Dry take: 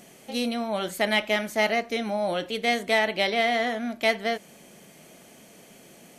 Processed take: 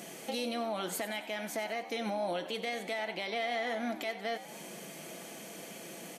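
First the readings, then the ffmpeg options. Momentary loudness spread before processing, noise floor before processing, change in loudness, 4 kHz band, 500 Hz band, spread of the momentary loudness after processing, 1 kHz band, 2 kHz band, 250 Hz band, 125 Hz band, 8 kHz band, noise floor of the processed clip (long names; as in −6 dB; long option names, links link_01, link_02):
7 LU, −52 dBFS, −11.0 dB, −10.0 dB, −9.5 dB, 11 LU, −9.0 dB, −11.5 dB, −9.5 dB, −8.0 dB, −2.5 dB, −47 dBFS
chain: -filter_complex "[0:a]highpass=190,aecho=1:1:6:0.33,acompressor=threshold=-35dB:ratio=5,alimiter=level_in=6.5dB:limit=-24dB:level=0:latency=1:release=103,volume=-6.5dB,asplit=2[link_01][link_02];[link_02]asplit=5[link_03][link_04][link_05][link_06][link_07];[link_03]adelay=93,afreqshift=76,volume=-14dB[link_08];[link_04]adelay=186,afreqshift=152,volume=-19.8dB[link_09];[link_05]adelay=279,afreqshift=228,volume=-25.7dB[link_10];[link_06]adelay=372,afreqshift=304,volume=-31.5dB[link_11];[link_07]adelay=465,afreqshift=380,volume=-37.4dB[link_12];[link_08][link_09][link_10][link_11][link_12]amix=inputs=5:normalize=0[link_13];[link_01][link_13]amix=inputs=2:normalize=0,volume=4.5dB"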